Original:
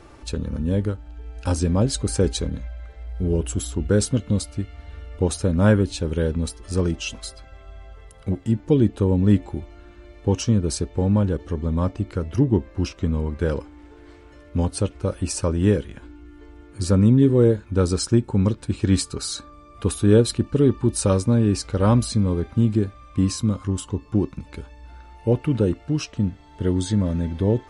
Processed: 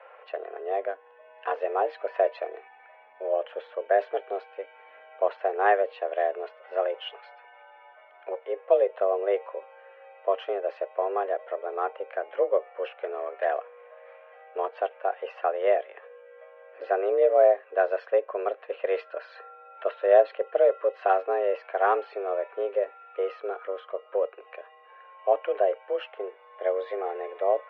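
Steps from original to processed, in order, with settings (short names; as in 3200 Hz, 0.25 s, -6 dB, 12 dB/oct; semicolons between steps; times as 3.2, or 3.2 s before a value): mistuned SSB +190 Hz 300–2500 Hz; 12.95–13.45 core saturation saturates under 760 Hz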